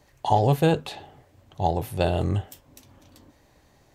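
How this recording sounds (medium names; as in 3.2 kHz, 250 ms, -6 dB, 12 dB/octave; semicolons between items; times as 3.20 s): noise floor -60 dBFS; spectral tilt -6.5 dB/octave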